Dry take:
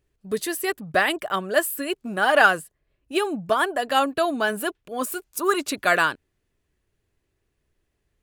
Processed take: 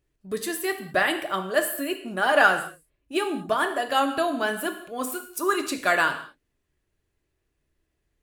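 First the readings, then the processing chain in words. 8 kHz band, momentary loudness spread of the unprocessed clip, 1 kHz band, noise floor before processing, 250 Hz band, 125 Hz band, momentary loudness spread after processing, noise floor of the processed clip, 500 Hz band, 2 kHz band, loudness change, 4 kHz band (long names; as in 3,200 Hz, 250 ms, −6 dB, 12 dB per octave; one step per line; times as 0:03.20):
−2.0 dB, 10 LU, −2.0 dB, −76 dBFS, −1.0 dB, −3.0 dB, 11 LU, −77 dBFS, −2.0 dB, −1.5 dB, −1.5 dB, −2.0 dB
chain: reverb whose tail is shaped and stops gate 240 ms falling, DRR 5.5 dB
level −3 dB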